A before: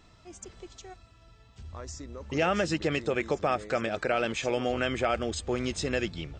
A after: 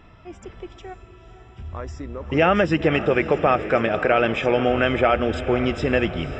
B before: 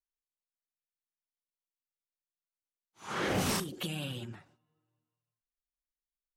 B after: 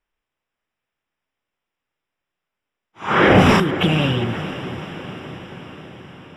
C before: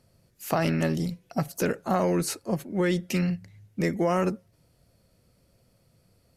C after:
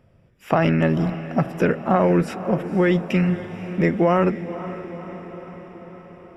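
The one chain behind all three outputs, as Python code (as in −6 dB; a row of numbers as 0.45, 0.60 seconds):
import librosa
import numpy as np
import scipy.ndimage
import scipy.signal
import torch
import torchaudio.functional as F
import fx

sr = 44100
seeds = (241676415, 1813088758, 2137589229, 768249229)

y = scipy.signal.savgol_filter(x, 25, 4, mode='constant')
y = fx.echo_diffused(y, sr, ms=508, feedback_pct=63, wet_db=-13)
y = y * 10.0 ** (-22 / 20.0) / np.sqrt(np.mean(np.square(y)))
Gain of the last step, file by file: +9.0, +19.5, +7.0 decibels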